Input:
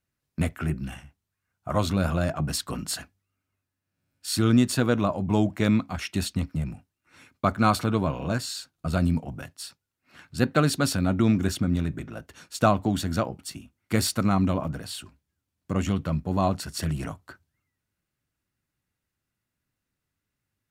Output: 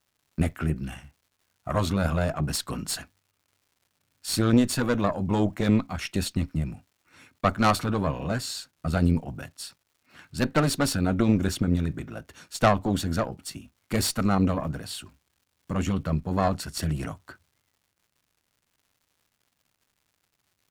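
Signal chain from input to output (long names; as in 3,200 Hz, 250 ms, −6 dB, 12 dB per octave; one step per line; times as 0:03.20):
harmonic generator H 4 −13 dB, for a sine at −6 dBFS
surface crackle 270 per second −55 dBFS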